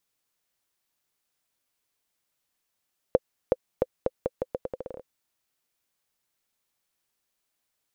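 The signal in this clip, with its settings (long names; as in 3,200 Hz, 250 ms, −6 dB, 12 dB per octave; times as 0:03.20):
bouncing ball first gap 0.37 s, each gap 0.81, 515 Hz, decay 36 ms −6.5 dBFS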